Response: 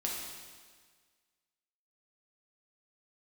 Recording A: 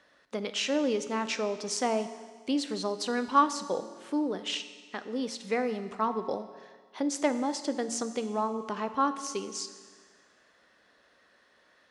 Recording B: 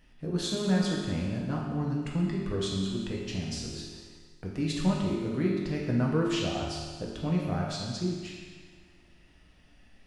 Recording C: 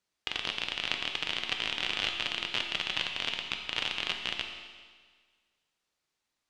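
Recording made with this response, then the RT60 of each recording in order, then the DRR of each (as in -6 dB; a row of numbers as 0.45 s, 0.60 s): B; 1.6 s, 1.6 s, 1.6 s; 10.0 dB, -3.0 dB, 3.5 dB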